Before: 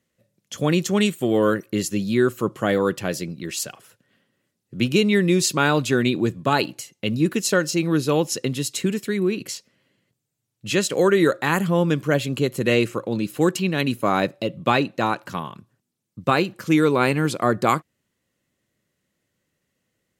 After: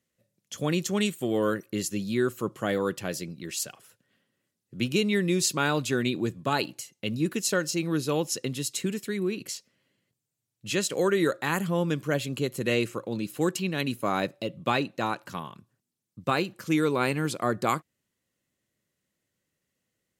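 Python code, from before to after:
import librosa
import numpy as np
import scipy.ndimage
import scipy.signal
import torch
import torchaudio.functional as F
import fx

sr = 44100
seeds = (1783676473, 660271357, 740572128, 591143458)

y = fx.peak_eq(x, sr, hz=11000.0, db=4.0, octaves=2.4)
y = F.gain(torch.from_numpy(y), -7.0).numpy()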